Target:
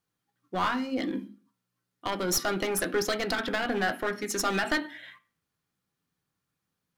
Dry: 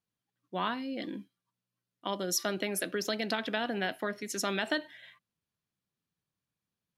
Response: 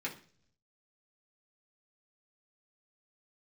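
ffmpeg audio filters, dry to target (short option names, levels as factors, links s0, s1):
-filter_complex "[0:a]aeval=exprs='clip(val(0),-1,0.0237)':c=same,asplit=2[s0][s1];[s1]highpass=190,equalizer=f=240:t=q:w=4:g=10,equalizer=f=810:t=q:w=4:g=6,equalizer=f=1300:t=q:w=4:g=10,lowpass=f=3500:w=0.5412,lowpass=f=3500:w=1.3066[s2];[1:a]atrim=start_sample=2205,afade=t=out:st=0.37:d=0.01,atrim=end_sample=16758[s3];[s2][s3]afir=irnorm=-1:irlink=0,volume=0.335[s4];[s0][s4]amix=inputs=2:normalize=0,volume=1.88"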